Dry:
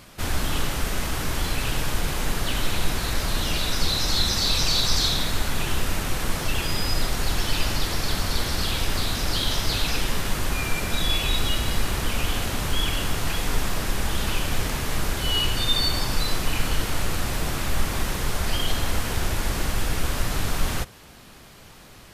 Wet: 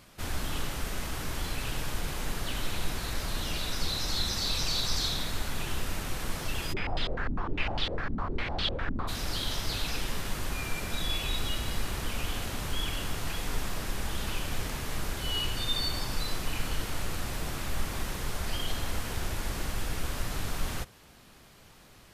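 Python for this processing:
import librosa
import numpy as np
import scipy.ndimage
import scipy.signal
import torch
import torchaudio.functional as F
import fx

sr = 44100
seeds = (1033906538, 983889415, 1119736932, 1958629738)

y = fx.filter_held_lowpass(x, sr, hz=9.9, low_hz=250.0, high_hz=3400.0, at=(6.72, 9.07), fade=0.02)
y = y * librosa.db_to_amplitude(-8.0)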